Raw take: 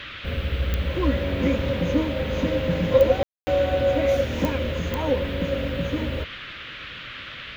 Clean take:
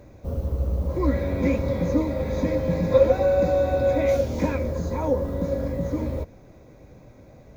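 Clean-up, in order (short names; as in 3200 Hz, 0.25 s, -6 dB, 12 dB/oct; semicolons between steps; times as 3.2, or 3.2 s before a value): de-click; room tone fill 3.23–3.47; noise print and reduce 10 dB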